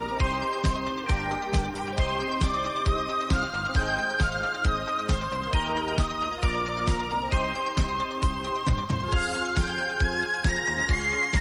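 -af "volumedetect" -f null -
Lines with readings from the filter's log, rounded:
mean_volume: -26.4 dB
max_volume: -11.0 dB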